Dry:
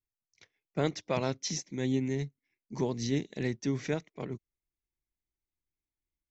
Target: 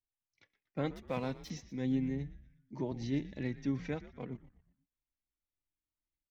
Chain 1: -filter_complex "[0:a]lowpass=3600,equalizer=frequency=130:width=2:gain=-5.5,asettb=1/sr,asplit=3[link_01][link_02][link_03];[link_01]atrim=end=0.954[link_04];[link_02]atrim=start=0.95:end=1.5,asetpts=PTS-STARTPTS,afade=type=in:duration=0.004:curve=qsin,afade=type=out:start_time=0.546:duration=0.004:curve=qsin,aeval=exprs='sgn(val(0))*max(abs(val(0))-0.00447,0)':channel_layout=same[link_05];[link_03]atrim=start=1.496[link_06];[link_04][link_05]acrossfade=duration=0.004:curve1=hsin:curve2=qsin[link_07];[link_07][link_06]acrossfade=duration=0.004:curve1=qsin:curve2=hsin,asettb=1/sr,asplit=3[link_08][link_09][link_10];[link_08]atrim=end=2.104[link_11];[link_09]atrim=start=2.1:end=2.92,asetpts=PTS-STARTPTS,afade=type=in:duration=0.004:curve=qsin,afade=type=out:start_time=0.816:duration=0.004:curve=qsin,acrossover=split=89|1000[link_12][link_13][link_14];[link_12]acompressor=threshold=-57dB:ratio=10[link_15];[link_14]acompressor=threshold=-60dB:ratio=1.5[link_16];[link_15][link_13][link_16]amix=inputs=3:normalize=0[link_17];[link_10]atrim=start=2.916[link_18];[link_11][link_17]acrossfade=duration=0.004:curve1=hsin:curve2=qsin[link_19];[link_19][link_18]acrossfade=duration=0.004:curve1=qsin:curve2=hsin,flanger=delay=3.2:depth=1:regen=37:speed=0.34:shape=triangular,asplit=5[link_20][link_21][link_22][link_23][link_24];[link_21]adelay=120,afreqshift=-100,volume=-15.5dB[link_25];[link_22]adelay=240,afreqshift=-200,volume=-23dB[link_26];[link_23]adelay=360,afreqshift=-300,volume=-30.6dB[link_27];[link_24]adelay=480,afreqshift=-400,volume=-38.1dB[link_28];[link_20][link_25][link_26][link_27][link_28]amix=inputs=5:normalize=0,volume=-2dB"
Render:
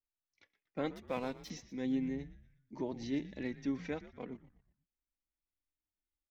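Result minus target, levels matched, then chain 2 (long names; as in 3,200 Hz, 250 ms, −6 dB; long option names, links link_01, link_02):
125 Hz band −7.0 dB
-filter_complex "[0:a]lowpass=3600,equalizer=frequency=130:width=2:gain=6,asettb=1/sr,asplit=3[link_01][link_02][link_03];[link_01]atrim=end=0.954[link_04];[link_02]atrim=start=0.95:end=1.5,asetpts=PTS-STARTPTS,afade=type=in:duration=0.004:curve=qsin,afade=type=out:start_time=0.546:duration=0.004:curve=qsin,aeval=exprs='sgn(val(0))*max(abs(val(0))-0.00447,0)':channel_layout=same[link_05];[link_03]atrim=start=1.496[link_06];[link_04][link_05]acrossfade=duration=0.004:curve1=hsin:curve2=qsin[link_07];[link_07][link_06]acrossfade=duration=0.004:curve1=qsin:curve2=hsin,asettb=1/sr,asplit=3[link_08][link_09][link_10];[link_08]atrim=end=2.104[link_11];[link_09]atrim=start=2.1:end=2.92,asetpts=PTS-STARTPTS,afade=type=in:duration=0.004:curve=qsin,afade=type=out:start_time=0.816:duration=0.004:curve=qsin,acrossover=split=89|1000[link_12][link_13][link_14];[link_12]acompressor=threshold=-57dB:ratio=10[link_15];[link_14]acompressor=threshold=-60dB:ratio=1.5[link_16];[link_15][link_13][link_16]amix=inputs=3:normalize=0[link_17];[link_10]atrim=start=2.916[link_18];[link_11][link_17]acrossfade=duration=0.004:curve1=hsin:curve2=qsin[link_19];[link_19][link_18]acrossfade=duration=0.004:curve1=qsin:curve2=hsin,flanger=delay=3.2:depth=1:regen=37:speed=0.34:shape=triangular,asplit=5[link_20][link_21][link_22][link_23][link_24];[link_21]adelay=120,afreqshift=-100,volume=-15.5dB[link_25];[link_22]adelay=240,afreqshift=-200,volume=-23dB[link_26];[link_23]adelay=360,afreqshift=-300,volume=-30.6dB[link_27];[link_24]adelay=480,afreqshift=-400,volume=-38.1dB[link_28];[link_20][link_25][link_26][link_27][link_28]amix=inputs=5:normalize=0,volume=-2dB"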